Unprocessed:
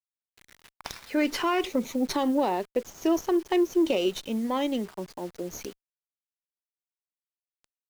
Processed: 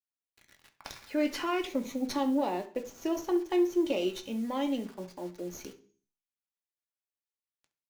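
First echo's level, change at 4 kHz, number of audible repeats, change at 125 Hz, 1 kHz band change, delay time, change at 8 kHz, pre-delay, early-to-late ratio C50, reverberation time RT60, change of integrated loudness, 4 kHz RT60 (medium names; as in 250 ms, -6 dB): -17.0 dB, -5.5 dB, 1, -4.0 dB, -5.5 dB, 68 ms, -5.5 dB, 3 ms, 13.5 dB, 0.40 s, -4.0 dB, 0.45 s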